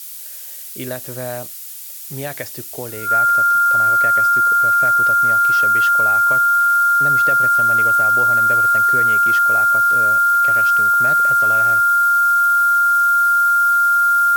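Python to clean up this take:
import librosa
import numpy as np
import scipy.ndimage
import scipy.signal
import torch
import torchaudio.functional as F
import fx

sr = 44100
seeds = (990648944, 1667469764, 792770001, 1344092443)

y = fx.notch(x, sr, hz=1400.0, q=30.0)
y = fx.noise_reduce(y, sr, print_start_s=1.54, print_end_s=2.04, reduce_db=30.0)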